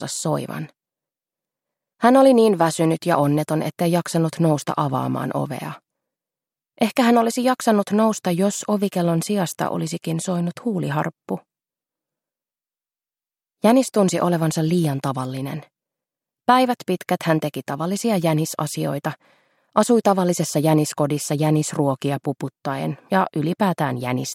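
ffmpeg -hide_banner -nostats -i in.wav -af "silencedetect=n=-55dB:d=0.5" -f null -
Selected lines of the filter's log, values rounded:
silence_start: 0.72
silence_end: 2.00 | silence_duration: 1.28
silence_start: 5.79
silence_end: 6.77 | silence_duration: 0.98
silence_start: 11.43
silence_end: 13.62 | silence_duration: 2.19
silence_start: 15.68
silence_end: 16.48 | silence_duration: 0.80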